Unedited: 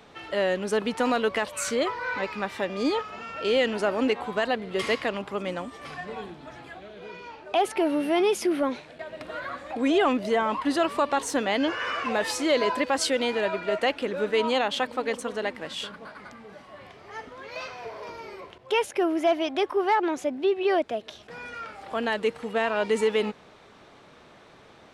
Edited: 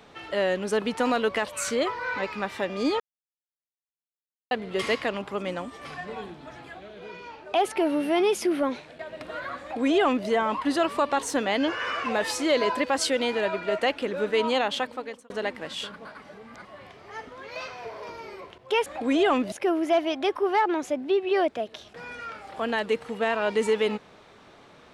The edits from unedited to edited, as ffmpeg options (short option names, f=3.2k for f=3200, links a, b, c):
-filter_complex "[0:a]asplit=8[a][b][c][d][e][f][g][h];[a]atrim=end=3,asetpts=PTS-STARTPTS,afade=t=out:st=2.996:d=0.004:c=hsin[i];[b]atrim=start=3:end=4.51,asetpts=PTS-STARTPTS,volume=0[j];[c]atrim=start=4.51:end=15.3,asetpts=PTS-STARTPTS,afade=t=in:d=0.004:c=hsin,afade=t=out:st=10.21:d=0.58[k];[d]atrim=start=15.3:end=16.222,asetpts=PTS-STARTPTS,afade=t=in:d=0.004:c=hsin[l];[e]atrim=start=16.218:end=16.652,asetpts=PTS-STARTPTS,areverse[m];[f]atrim=start=16.648:end=18.862[n];[g]atrim=start=9.608:end=10.272[o];[h]atrim=start=18.858[p];[i][j][k][l]concat=n=4:v=0:a=1[q];[q][m]acrossfade=d=0.004:c1=hsin:c2=hsin[r];[r][n]acrossfade=d=0.004:c1=hsin:c2=hsin[s];[s][o]acrossfade=d=0.004:c1=hsin:c2=hsin[t];[t][p]acrossfade=d=0.004:c1=hsin:c2=hsin"